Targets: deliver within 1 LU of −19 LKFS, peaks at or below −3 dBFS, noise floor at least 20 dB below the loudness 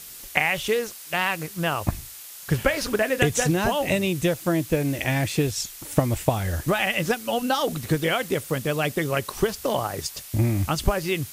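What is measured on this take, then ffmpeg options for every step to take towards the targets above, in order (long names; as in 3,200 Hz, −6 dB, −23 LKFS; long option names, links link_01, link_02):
background noise floor −41 dBFS; target noise floor −45 dBFS; integrated loudness −24.5 LKFS; sample peak −4.0 dBFS; target loudness −19.0 LKFS
→ -af "afftdn=noise_reduction=6:noise_floor=-41"
-af "volume=5.5dB,alimiter=limit=-3dB:level=0:latency=1"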